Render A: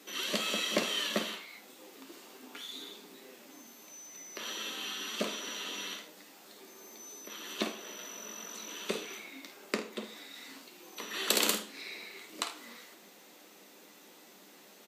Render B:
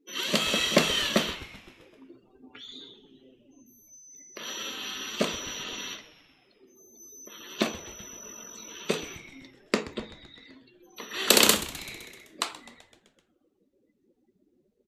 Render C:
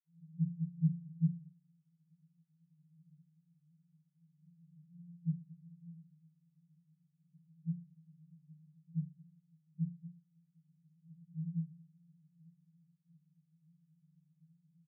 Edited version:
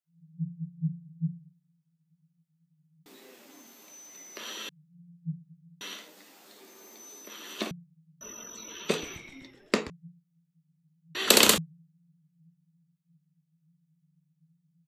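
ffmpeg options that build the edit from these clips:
-filter_complex "[0:a]asplit=2[a][b];[1:a]asplit=2[c][d];[2:a]asplit=5[e][f][g][h][i];[e]atrim=end=3.062[j];[a]atrim=start=3.058:end=4.692[k];[f]atrim=start=4.688:end=5.812[l];[b]atrim=start=5.808:end=7.712[m];[g]atrim=start=7.708:end=8.212[n];[c]atrim=start=8.208:end=9.902[o];[h]atrim=start=9.898:end=11.152[p];[d]atrim=start=11.148:end=11.582[q];[i]atrim=start=11.578[r];[j][k]acrossfade=d=0.004:c1=hsin:c2=hsin[s];[s][l]acrossfade=d=0.004:c1=hsin:c2=hsin[t];[t][m]acrossfade=d=0.004:c1=hsin:c2=hsin[u];[u][n]acrossfade=d=0.004:c1=hsin:c2=hsin[v];[v][o]acrossfade=d=0.004:c1=hsin:c2=hsin[w];[w][p]acrossfade=d=0.004:c1=hsin:c2=hsin[x];[x][q]acrossfade=d=0.004:c1=hsin:c2=hsin[y];[y][r]acrossfade=d=0.004:c1=hsin:c2=hsin"

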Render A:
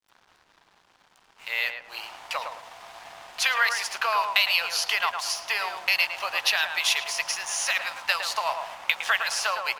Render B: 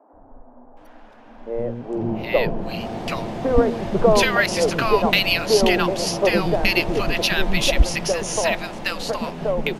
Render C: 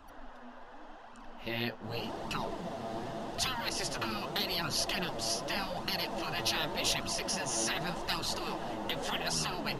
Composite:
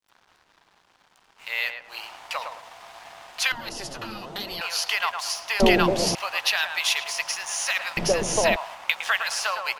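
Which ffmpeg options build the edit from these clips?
-filter_complex "[1:a]asplit=2[a][b];[0:a]asplit=4[c][d][e][f];[c]atrim=end=3.522[g];[2:a]atrim=start=3.518:end=4.612[h];[d]atrim=start=4.608:end=5.602[i];[a]atrim=start=5.598:end=6.152[j];[e]atrim=start=6.148:end=7.972[k];[b]atrim=start=7.968:end=8.562[l];[f]atrim=start=8.558[m];[g][h]acrossfade=d=0.004:c1=hsin:c2=hsin[n];[n][i]acrossfade=d=0.004:c1=hsin:c2=hsin[o];[o][j]acrossfade=d=0.004:c1=hsin:c2=hsin[p];[p][k]acrossfade=d=0.004:c1=hsin:c2=hsin[q];[q][l]acrossfade=d=0.004:c1=hsin:c2=hsin[r];[r][m]acrossfade=d=0.004:c1=hsin:c2=hsin"

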